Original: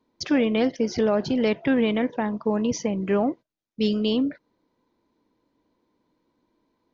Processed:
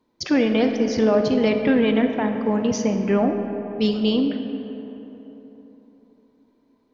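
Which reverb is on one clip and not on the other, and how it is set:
comb and all-pass reverb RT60 3.8 s, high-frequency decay 0.45×, pre-delay 0 ms, DRR 5.5 dB
level +2 dB

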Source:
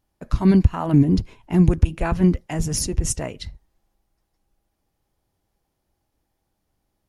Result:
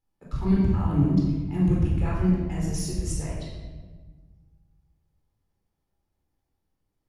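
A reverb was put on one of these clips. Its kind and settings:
rectangular room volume 1,200 cubic metres, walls mixed, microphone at 4.1 metres
level −15.5 dB

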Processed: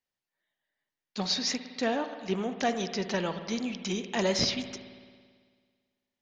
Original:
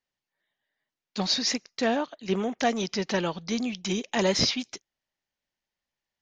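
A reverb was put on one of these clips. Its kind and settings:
spring reverb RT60 1.8 s, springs 55 ms, chirp 55 ms, DRR 9 dB
level −3.5 dB

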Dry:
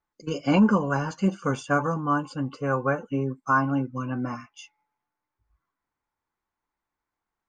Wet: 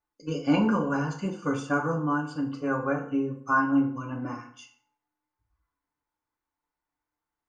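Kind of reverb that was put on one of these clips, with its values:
feedback delay network reverb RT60 0.58 s, low-frequency decay 0.95×, high-frequency decay 0.7×, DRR 1 dB
level −5.5 dB

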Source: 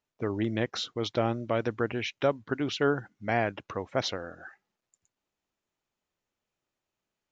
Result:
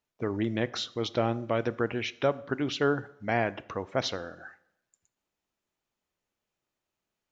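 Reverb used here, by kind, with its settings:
dense smooth reverb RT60 0.81 s, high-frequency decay 0.8×, DRR 16.5 dB

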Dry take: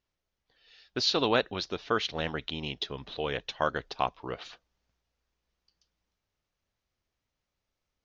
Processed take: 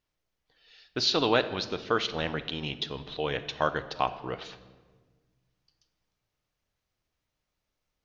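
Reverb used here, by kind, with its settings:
rectangular room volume 1,200 cubic metres, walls mixed, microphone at 0.51 metres
level +1 dB

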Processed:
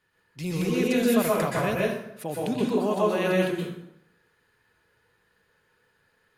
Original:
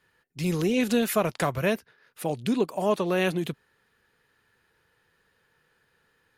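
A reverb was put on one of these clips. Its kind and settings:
dense smooth reverb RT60 0.79 s, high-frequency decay 0.7×, pre-delay 110 ms, DRR −4 dB
level −4.5 dB

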